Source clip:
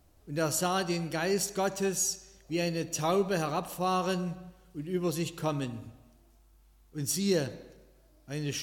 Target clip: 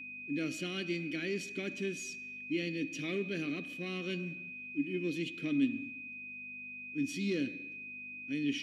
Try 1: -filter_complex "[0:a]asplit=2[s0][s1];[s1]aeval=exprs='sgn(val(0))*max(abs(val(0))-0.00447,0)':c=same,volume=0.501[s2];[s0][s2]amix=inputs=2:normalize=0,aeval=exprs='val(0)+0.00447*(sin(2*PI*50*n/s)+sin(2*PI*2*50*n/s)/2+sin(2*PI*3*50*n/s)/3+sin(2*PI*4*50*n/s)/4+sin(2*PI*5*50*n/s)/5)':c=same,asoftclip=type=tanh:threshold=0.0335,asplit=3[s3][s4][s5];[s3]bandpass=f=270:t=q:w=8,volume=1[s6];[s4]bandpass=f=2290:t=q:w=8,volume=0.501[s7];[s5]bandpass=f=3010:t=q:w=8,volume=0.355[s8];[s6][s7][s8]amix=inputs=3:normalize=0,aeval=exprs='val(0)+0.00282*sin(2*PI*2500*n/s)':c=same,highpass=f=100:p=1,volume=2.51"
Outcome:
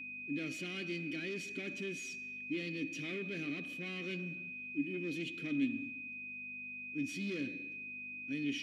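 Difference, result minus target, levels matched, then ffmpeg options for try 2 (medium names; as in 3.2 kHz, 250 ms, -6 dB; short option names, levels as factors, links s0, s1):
saturation: distortion +10 dB
-filter_complex "[0:a]asplit=2[s0][s1];[s1]aeval=exprs='sgn(val(0))*max(abs(val(0))-0.00447,0)':c=same,volume=0.501[s2];[s0][s2]amix=inputs=2:normalize=0,aeval=exprs='val(0)+0.00447*(sin(2*PI*50*n/s)+sin(2*PI*2*50*n/s)/2+sin(2*PI*3*50*n/s)/3+sin(2*PI*4*50*n/s)/4+sin(2*PI*5*50*n/s)/5)':c=same,asoftclip=type=tanh:threshold=0.106,asplit=3[s3][s4][s5];[s3]bandpass=f=270:t=q:w=8,volume=1[s6];[s4]bandpass=f=2290:t=q:w=8,volume=0.501[s7];[s5]bandpass=f=3010:t=q:w=8,volume=0.355[s8];[s6][s7][s8]amix=inputs=3:normalize=0,aeval=exprs='val(0)+0.00282*sin(2*PI*2500*n/s)':c=same,highpass=f=100:p=1,volume=2.51"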